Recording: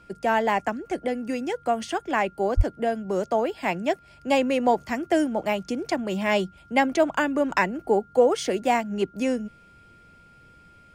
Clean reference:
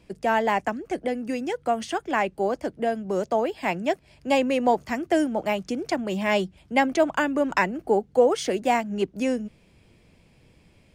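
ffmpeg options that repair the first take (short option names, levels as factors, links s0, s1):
-filter_complex "[0:a]bandreject=f=1400:w=30,asplit=3[s0][s1][s2];[s0]afade=t=out:st=2.56:d=0.02[s3];[s1]highpass=f=140:w=0.5412,highpass=f=140:w=1.3066,afade=t=in:st=2.56:d=0.02,afade=t=out:st=2.68:d=0.02[s4];[s2]afade=t=in:st=2.68:d=0.02[s5];[s3][s4][s5]amix=inputs=3:normalize=0"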